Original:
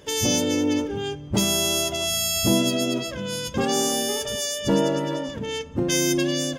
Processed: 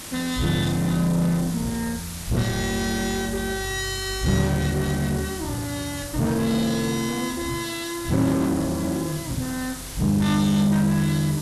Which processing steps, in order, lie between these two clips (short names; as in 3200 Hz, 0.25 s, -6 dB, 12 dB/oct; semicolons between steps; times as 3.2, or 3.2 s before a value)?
high shelf 2500 Hz -12 dB; added noise white -43 dBFS; dynamic EQ 4300 Hz, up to -6 dB, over -49 dBFS, Q 1.5; in parallel at -3 dB: wavefolder -26 dBFS; on the sum: speed mistake 78 rpm record played at 45 rpm; on a send: flutter echo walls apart 6.9 m, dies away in 0.39 s